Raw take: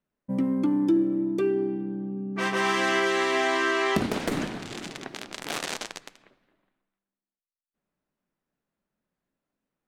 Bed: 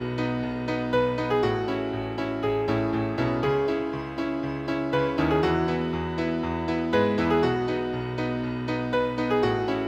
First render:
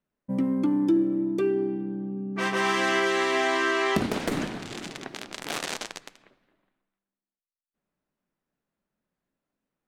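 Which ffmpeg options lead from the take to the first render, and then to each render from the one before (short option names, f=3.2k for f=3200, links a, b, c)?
-af anull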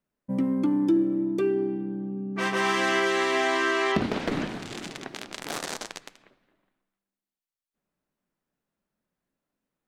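-filter_complex "[0:a]asettb=1/sr,asplit=3[a][b][c];[a]atrim=end=3.924[d];[b]atrim=start=3.92:end=4.49,asetpts=PTS-STARTPTS,afade=t=in:d=0.004:c=qsin,afade=t=out:st=0.566:d=0.004:c=qsin,acrossover=split=5500[e][f];[f]acompressor=threshold=-58dB:ratio=4:attack=1:release=60[g];[e][g]amix=inputs=2:normalize=0[h];[c]atrim=start=4.486[i];[d][h]acrossfade=d=0.004:c1=hsin:c2=qsin[j];[j][i]acrossfade=d=0.004:c1=qsin:c2=hsin,asettb=1/sr,asplit=3[k][l][m];[k]atrim=end=5.474[n];[l]atrim=start=5.47:end=5.9,asetpts=PTS-STARTPTS,afade=t=in:d=0.004:c=qsin,afade=t=out:st=0.426:d=0.004:c=qsin,equalizer=f=2.7k:t=o:w=0.94:g=-5.5[o];[m]atrim=start=5.896[p];[n][o]acrossfade=d=0.004:c1=hsin:c2=qsin[q];[q][p]acrossfade=d=0.004:c1=qsin:c2=hsin"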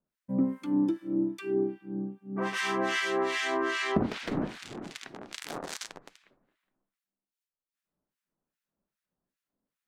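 -filter_complex "[0:a]acrossover=split=1300[a][b];[a]aeval=exprs='val(0)*(1-1/2+1/2*cos(2*PI*2.5*n/s))':c=same[c];[b]aeval=exprs='val(0)*(1-1/2-1/2*cos(2*PI*2.5*n/s))':c=same[d];[c][d]amix=inputs=2:normalize=0"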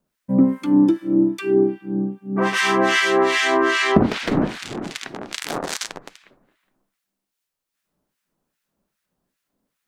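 -af "volume=11.5dB"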